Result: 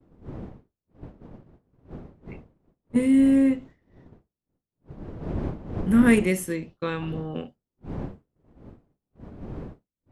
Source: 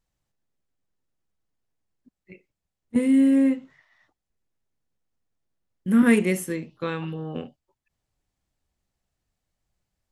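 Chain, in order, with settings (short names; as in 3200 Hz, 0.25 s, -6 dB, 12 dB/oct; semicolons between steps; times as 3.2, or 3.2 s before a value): wind noise 270 Hz -38 dBFS; expander -37 dBFS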